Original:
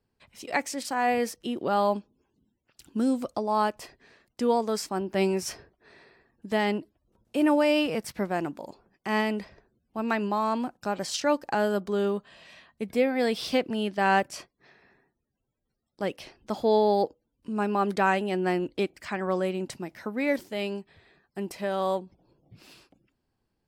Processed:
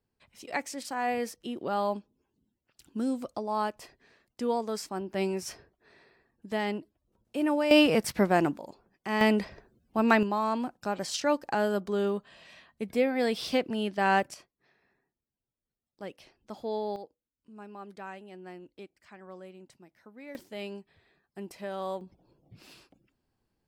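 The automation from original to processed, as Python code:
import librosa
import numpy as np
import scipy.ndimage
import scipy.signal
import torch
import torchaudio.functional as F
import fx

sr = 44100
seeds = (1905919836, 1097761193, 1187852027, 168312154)

y = fx.gain(x, sr, db=fx.steps((0.0, -5.0), (7.71, 5.0), (8.57, -3.0), (9.21, 5.0), (10.23, -2.0), (14.34, -11.0), (16.96, -19.0), (20.35, -7.5), (22.01, -1.0)))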